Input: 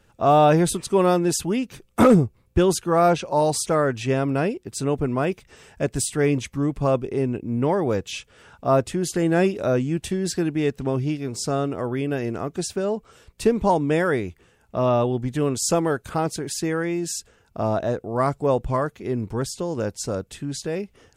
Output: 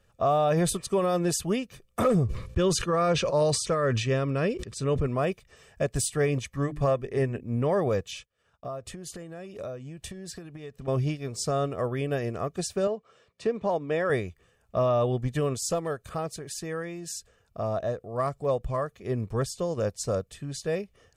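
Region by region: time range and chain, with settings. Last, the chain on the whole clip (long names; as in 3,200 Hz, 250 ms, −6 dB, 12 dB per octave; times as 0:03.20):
0:02.24–0:05.07: low-pass filter 7,500 Hz + parametric band 730 Hz −9.5 dB 0.41 octaves + level that may fall only so fast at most 52 dB per second
0:06.53–0:07.43: parametric band 1,800 Hz +10 dB 0.32 octaves + mains-hum notches 50/100/150/200/250/300/350 Hz
0:08.11–0:10.88: downward expander −41 dBFS + downward compressor 20 to 1, threshold −28 dBFS
0:12.87–0:14.10: high-pass filter 190 Hz + downward compressor 1.5 to 1, threshold −27 dBFS + high-frequency loss of the air 100 metres
0:15.56–0:18.93: downward compressor 1.5 to 1, threshold −32 dBFS + hard clipping −17.5 dBFS
whole clip: comb filter 1.7 ms, depth 48%; brickwall limiter −15.5 dBFS; expander for the loud parts 1.5 to 1, over −35 dBFS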